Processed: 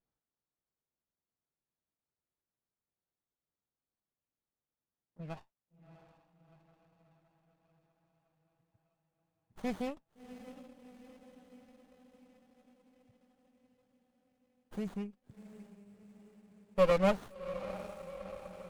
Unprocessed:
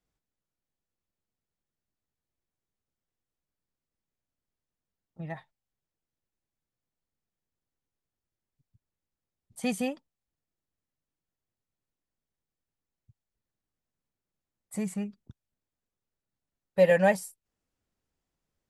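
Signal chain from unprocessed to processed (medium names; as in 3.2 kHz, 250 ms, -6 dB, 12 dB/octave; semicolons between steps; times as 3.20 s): tracing distortion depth 0.029 ms; bass shelf 110 Hz -8.5 dB; echo that smears into a reverb 698 ms, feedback 61%, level -13 dB; sliding maximum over 17 samples; trim -4 dB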